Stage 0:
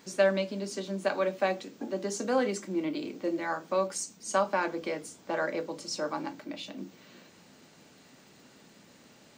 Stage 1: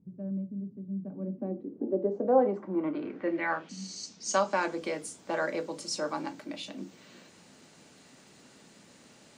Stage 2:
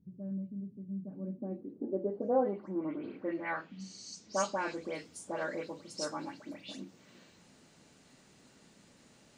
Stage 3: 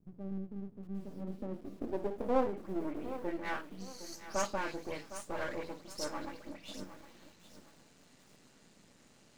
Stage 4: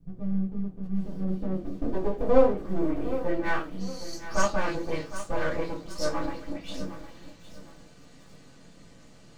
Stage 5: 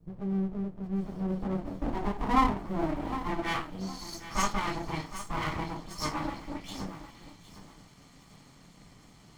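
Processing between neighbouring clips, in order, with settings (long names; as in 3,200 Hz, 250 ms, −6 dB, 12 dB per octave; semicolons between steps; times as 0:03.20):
healed spectral selection 0:03.72–0:04.01, 310–11,000 Hz after; low-pass filter sweep 150 Hz → 11,000 Hz, 0:00.95–0:04.87
low-shelf EQ 87 Hz +12 dB; all-pass dispersion highs, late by 127 ms, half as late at 2,800 Hz; level −6 dB
gain on one half-wave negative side −12 dB; feedback echo at a low word length 760 ms, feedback 35%, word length 9 bits, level −12.5 dB; level +1.5 dB
convolution reverb RT60 0.20 s, pre-delay 3 ms, DRR −6.5 dB
lower of the sound and its delayed copy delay 0.92 ms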